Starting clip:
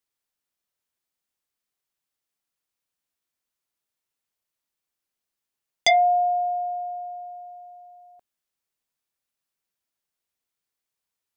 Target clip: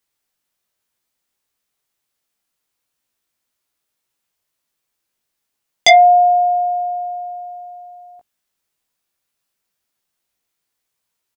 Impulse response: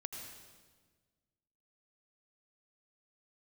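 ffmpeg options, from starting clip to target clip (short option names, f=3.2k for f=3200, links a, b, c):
-filter_complex "[0:a]asplit=2[a][b];[b]adelay=18,volume=-4.5dB[c];[a][c]amix=inputs=2:normalize=0,volume=7.5dB"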